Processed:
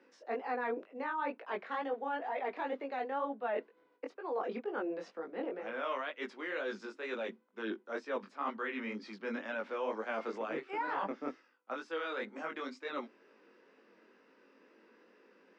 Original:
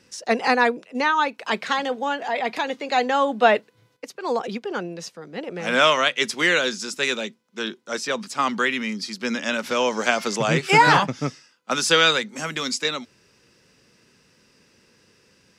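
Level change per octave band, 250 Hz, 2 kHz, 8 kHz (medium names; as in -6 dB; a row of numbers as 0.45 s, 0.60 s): -14.5 dB, -19.0 dB, under -35 dB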